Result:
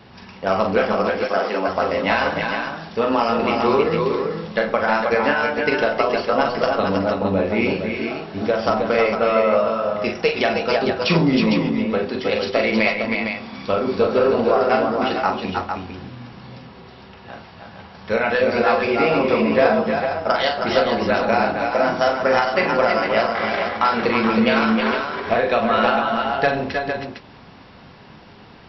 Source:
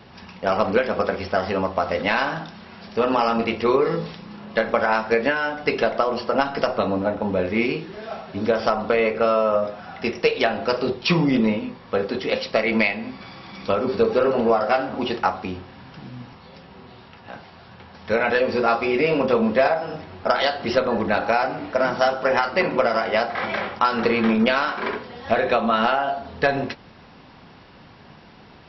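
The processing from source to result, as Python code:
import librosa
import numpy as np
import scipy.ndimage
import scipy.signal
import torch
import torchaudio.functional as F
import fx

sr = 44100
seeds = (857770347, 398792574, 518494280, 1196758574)

y = fx.highpass(x, sr, hz=240.0, slope=24, at=(0.92, 1.68))
y = fx.echo_multitap(y, sr, ms=(42, 311, 321, 456), db=(-6.0, -10.0, -5.5, -6.5))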